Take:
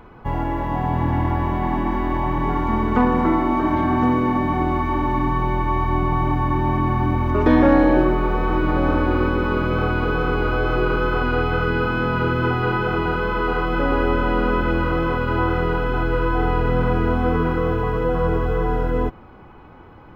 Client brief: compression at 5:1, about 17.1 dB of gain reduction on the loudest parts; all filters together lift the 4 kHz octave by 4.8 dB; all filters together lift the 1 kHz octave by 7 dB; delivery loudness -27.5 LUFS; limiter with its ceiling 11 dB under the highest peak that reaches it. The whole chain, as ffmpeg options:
-af "equalizer=f=1000:t=o:g=8,equalizer=f=4000:t=o:g=6.5,acompressor=threshold=0.0355:ratio=5,volume=2.82,alimiter=limit=0.112:level=0:latency=1"

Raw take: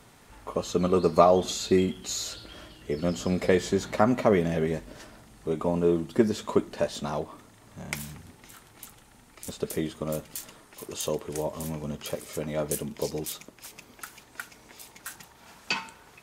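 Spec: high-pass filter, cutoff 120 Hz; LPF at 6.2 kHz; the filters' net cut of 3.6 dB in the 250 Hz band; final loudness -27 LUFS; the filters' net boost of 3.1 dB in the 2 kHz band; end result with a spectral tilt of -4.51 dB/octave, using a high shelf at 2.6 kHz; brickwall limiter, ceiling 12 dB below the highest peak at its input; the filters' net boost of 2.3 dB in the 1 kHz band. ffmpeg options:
-af "highpass=120,lowpass=6200,equalizer=f=250:t=o:g=-5,equalizer=f=1000:t=o:g=3,equalizer=f=2000:t=o:g=6,highshelf=f=2600:g=-6.5,volume=1.78,alimiter=limit=0.282:level=0:latency=1"

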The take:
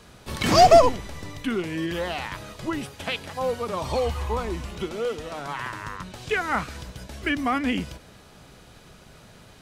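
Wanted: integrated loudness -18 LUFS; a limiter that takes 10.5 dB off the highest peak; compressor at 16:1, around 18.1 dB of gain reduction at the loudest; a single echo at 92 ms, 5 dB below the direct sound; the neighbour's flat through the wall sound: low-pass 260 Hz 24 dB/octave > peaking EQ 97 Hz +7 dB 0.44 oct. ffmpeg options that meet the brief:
-af "acompressor=threshold=0.0447:ratio=16,alimiter=level_in=1.19:limit=0.0631:level=0:latency=1,volume=0.841,lowpass=f=260:w=0.5412,lowpass=f=260:w=1.3066,equalizer=f=97:t=o:w=0.44:g=7,aecho=1:1:92:0.562,volume=11.9"

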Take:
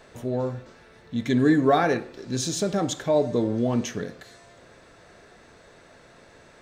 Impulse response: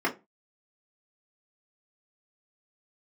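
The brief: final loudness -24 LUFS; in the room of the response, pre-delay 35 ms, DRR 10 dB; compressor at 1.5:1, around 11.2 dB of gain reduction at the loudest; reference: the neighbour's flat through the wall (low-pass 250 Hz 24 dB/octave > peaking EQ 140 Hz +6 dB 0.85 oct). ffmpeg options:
-filter_complex "[0:a]acompressor=threshold=0.00447:ratio=1.5,asplit=2[s0][s1];[1:a]atrim=start_sample=2205,adelay=35[s2];[s1][s2]afir=irnorm=-1:irlink=0,volume=0.0841[s3];[s0][s3]amix=inputs=2:normalize=0,lowpass=f=250:w=0.5412,lowpass=f=250:w=1.3066,equalizer=f=140:t=o:w=0.85:g=6,volume=4.47"

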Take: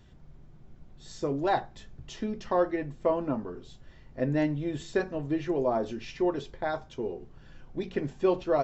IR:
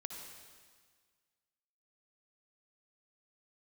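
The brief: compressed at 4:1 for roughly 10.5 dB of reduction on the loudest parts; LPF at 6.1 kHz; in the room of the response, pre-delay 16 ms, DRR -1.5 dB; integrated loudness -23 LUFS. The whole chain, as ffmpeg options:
-filter_complex "[0:a]lowpass=6100,acompressor=threshold=0.0224:ratio=4,asplit=2[s0][s1];[1:a]atrim=start_sample=2205,adelay=16[s2];[s1][s2]afir=irnorm=-1:irlink=0,volume=1.5[s3];[s0][s3]amix=inputs=2:normalize=0,volume=3.98"

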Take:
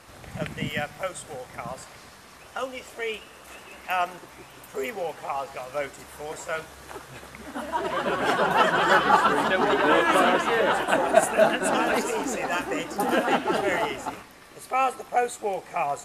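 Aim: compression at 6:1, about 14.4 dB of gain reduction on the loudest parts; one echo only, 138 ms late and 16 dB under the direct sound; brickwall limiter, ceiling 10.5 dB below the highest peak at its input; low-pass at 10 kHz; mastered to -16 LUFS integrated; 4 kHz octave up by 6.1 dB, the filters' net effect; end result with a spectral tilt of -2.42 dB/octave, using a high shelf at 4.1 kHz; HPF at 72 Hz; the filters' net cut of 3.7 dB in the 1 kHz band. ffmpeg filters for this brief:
-af "highpass=72,lowpass=10000,equalizer=f=1000:t=o:g=-6,equalizer=f=4000:t=o:g=5.5,highshelf=f=4100:g=7,acompressor=threshold=0.0316:ratio=6,alimiter=level_in=1.33:limit=0.0631:level=0:latency=1,volume=0.75,aecho=1:1:138:0.158,volume=11.2"

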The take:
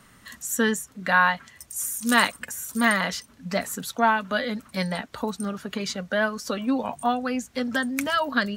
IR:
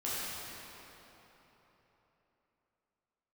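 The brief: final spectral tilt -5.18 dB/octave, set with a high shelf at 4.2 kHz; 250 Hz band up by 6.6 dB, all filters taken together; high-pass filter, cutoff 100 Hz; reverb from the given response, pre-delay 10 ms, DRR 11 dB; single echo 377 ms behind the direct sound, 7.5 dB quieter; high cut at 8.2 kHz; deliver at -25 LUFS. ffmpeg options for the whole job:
-filter_complex "[0:a]highpass=100,lowpass=8200,equalizer=f=250:t=o:g=7.5,highshelf=f=4200:g=-6,aecho=1:1:377:0.422,asplit=2[s0][s1];[1:a]atrim=start_sample=2205,adelay=10[s2];[s1][s2]afir=irnorm=-1:irlink=0,volume=0.141[s3];[s0][s3]amix=inputs=2:normalize=0,volume=0.75"

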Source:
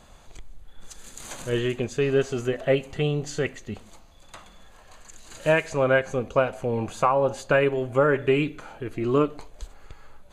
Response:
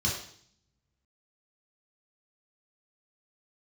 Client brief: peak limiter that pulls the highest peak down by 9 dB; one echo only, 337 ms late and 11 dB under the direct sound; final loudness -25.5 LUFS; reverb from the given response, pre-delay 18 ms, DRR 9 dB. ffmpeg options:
-filter_complex "[0:a]alimiter=limit=0.141:level=0:latency=1,aecho=1:1:337:0.282,asplit=2[s0][s1];[1:a]atrim=start_sample=2205,adelay=18[s2];[s1][s2]afir=irnorm=-1:irlink=0,volume=0.15[s3];[s0][s3]amix=inputs=2:normalize=0,volume=1.19"

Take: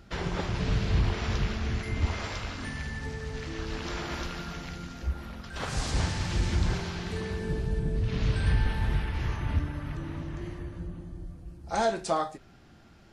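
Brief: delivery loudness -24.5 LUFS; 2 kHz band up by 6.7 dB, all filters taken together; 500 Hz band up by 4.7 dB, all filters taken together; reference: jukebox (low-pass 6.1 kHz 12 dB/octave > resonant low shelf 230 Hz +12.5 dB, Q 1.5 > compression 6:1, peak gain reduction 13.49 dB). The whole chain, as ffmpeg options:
-af "lowpass=6100,lowshelf=f=230:t=q:w=1.5:g=12.5,equalizer=f=500:t=o:g=8.5,equalizer=f=2000:t=o:g=8,acompressor=threshold=0.1:ratio=6,volume=1.26"

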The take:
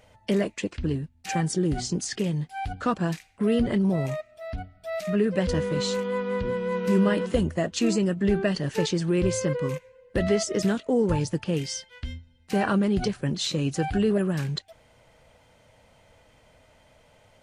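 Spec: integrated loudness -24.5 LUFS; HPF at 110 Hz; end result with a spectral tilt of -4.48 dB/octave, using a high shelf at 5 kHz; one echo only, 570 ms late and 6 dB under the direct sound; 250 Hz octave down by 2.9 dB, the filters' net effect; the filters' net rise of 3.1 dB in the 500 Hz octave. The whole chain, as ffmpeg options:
-af "highpass=110,equalizer=f=250:t=o:g=-5,equalizer=f=500:t=o:g=5,highshelf=f=5000:g=7.5,aecho=1:1:570:0.501,volume=1.06"

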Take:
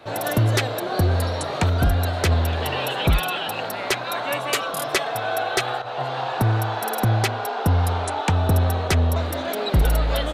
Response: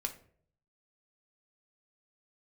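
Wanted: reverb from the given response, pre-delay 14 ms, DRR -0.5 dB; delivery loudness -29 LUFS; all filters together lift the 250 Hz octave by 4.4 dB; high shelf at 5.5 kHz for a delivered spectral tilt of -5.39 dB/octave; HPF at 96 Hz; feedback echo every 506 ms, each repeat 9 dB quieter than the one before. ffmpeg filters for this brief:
-filter_complex "[0:a]highpass=96,equalizer=f=250:t=o:g=6,highshelf=f=5500:g=-4.5,aecho=1:1:506|1012|1518|2024:0.355|0.124|0.0435|0.0152,asplit=2[s0][s1];[1:a]atrim=start_sample=2205,adelay=14[s2];[s1][s2]afir=irnorm=-1:irlink=0,volume=1[s3];[s0][s3]amix=inputs=2:normalize=0,volume=0.355"

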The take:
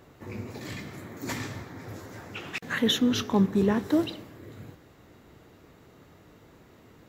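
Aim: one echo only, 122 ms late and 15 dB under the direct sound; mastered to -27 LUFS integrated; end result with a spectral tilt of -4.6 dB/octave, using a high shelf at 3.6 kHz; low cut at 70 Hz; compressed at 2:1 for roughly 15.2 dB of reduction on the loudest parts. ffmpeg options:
-af "highpass=70,highshelf=f=3600:g=-5.5,acompressor=threshold=0.00398:ratio=2,aecho=1:1:122:0.178,volume=6.31"

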